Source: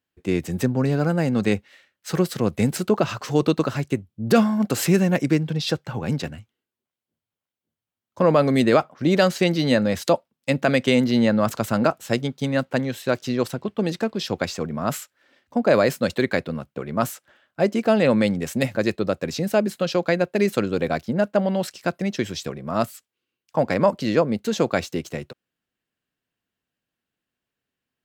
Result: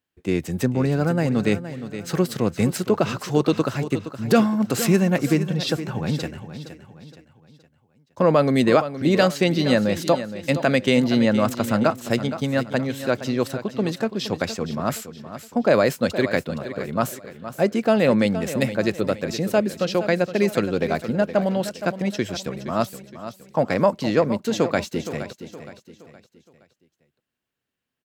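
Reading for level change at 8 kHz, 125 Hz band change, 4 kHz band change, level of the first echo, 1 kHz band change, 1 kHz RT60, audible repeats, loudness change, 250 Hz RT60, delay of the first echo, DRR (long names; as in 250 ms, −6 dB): +0.5 dB, +0.5 dB, +0.5 dB, −12.0 dB, +0.5 dB, no reverb audible, 3, 0.0 dB, no reverb audible, 468 ms, no reverb audible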